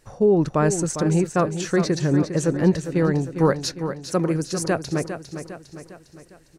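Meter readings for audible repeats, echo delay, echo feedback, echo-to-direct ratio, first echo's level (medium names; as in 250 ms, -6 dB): 5, 404 ms, 50%, -8.5 dB, -9.5 dB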